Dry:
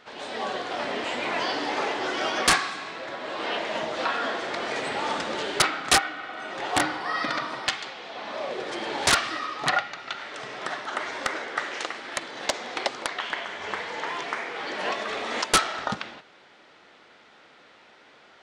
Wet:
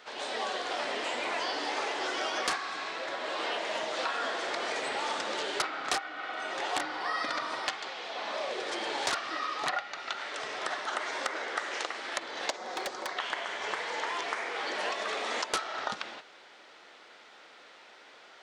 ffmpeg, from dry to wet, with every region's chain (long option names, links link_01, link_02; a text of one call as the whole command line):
ffmpeg -i in.wav -filter_complex "[0:a]asettb=1/sr,asplit=3[link_01][link_02][link_03];[link_01]atrim=end=12.564[link_04];[link_02]atrim=start=12.56:end=13.17,asetpts=PTS-STARTPTS,afade=type=in:duration=0.004:curve=qsin,afade=type=out:start_time=0.606:duration=0.004:curve=qsin,equalizer=frequency=2800:width_type=o:width=1.3:gain=-9,aecho=1:1:5.4:0.36,atrim=end_sample=26901,aeval=exprs='0.0596*(abs(mod(val(0)/0.0596+3,4)-2)-1)':channel_layout=same[link_05];[link_03]atrim=start=13.166[link_06];[link_04][link_05]acrossfade=duration=0.004:curve1=hsin:curve2=qsin[link_07];[link_07][link_06]acrossfade=duration=0.004:curve1=qsin:curve2=hsin,acrossover=split=1500|6800[link_08][link_09][link_10];[link_08]acompressor=threshold=-32dB:ratio=4[link_11];[link_09]acompressor=threshold=-37dB:ratio=4[link_12];[link_10]acompressor=threshold=-55dB:ratio=4[link_13];[link_11][link_12][link_13]amix=inputs=3:normalize=0,bass=frequency=250:gain=-13,treble=frequency=4000:gain=4" out.wav